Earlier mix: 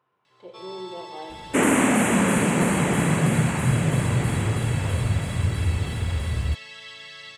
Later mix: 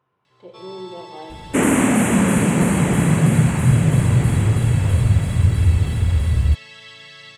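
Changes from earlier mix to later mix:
second sound: add treble shelf 9.2 kHz +5.5 dB; master: add bass shelf 210 Hz +10 dB

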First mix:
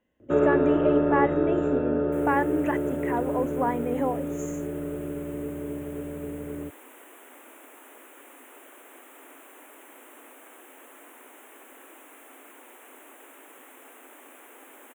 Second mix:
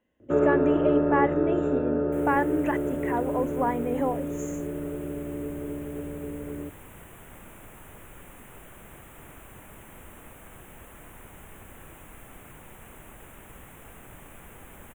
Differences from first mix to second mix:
first sound: add distance through air 330 m; second sound: remove steep high-pass 250 Hz 96 dB/octave

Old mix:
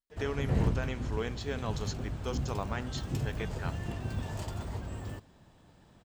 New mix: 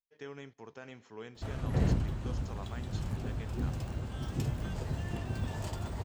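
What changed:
speech -10.5 dB; background: entry +1.25 s

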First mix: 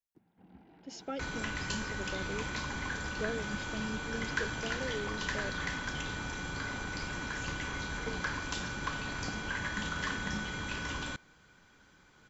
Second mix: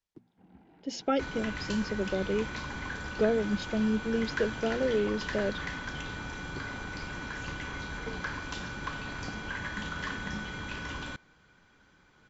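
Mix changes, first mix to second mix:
speech +11.5 dB; master: add distance through air 76 m

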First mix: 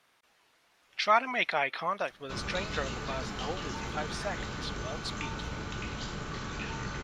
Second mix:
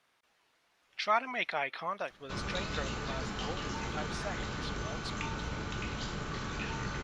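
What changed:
speech -4.5 dB; master: add treble shelf 11 kHz -5 dB

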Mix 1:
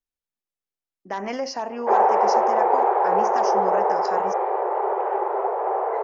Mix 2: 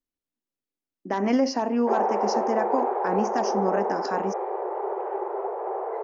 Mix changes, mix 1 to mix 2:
background -9.0 dB; master: add peaking EQ 270 Hz +13 dB 1.1 oct

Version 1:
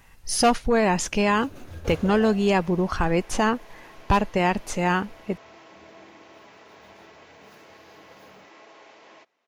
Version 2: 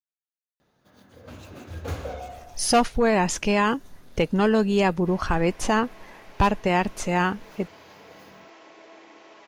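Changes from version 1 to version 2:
speech: entry +2.30 s; first sound +3.0 dB; second sound: entry +2.95 s

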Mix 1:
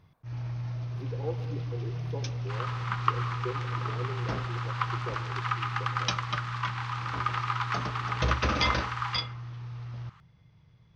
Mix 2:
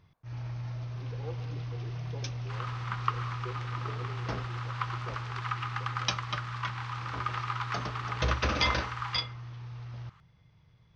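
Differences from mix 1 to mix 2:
speech -6.5 dB; second sound -3.5 dB; master: add peaking EQ 180 Hz -3.5 dB 2.2 oct

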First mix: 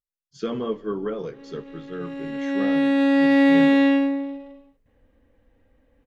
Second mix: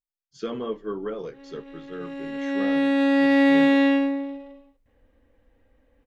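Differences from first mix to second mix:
speech: send -11.5 dB; master: add peaking EQ 150 Hz -5 dB 1.4 oct

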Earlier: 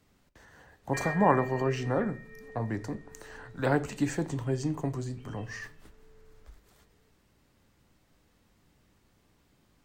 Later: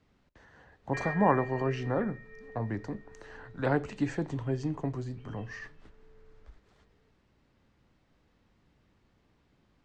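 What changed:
speech: send -7.5 dB; master: add distance through air 130 m

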